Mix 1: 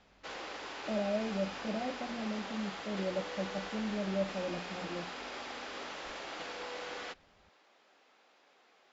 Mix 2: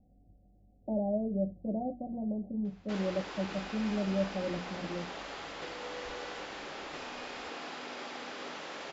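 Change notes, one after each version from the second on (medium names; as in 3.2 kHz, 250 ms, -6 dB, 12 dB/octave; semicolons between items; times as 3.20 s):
background: entry +2.65 s; master: add bass shelf 260 Hz +6.5 dB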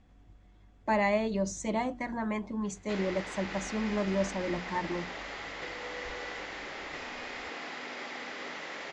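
speech: remove rippled Chebyshev low-pass 780 Hz, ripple 6 dB; background: add peaking EQ 2 kHz +9.5 dB 0.32 oct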